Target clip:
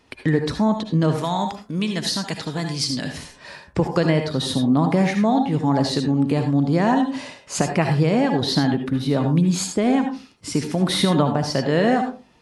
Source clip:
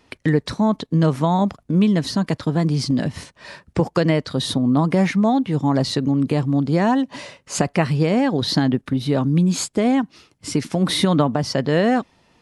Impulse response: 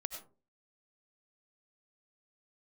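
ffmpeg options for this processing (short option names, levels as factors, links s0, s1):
-filter_complex "[0:a]asettb=1/sr,asplit=3[s0][s1][s2];[s0]atrim=end=1.184[s3];[s1]atrim=start=1.18:end=3.18,asetpts=PTS-STARTPTS,afade=t=in:d=0.004:c=qsin,afade=t=out:st=1.996:d=0.004:c=qsin,tiltshelf=f=1400:g=-7[s4];[s2]atrim=start=3.176[s5];[s3][s4]acrossfade=d=0.004:c1=hsin:c2=qsin[s6];[s6][s5]acrossfade=d=0.004:c1=qsin:c2=hsin[s7];[1:a]atrim=start_sample=2205,asetrate=57330,aresample=44100[s8];[s7][s8]afir=irnorm=-1:irlink=0,volume=1.41"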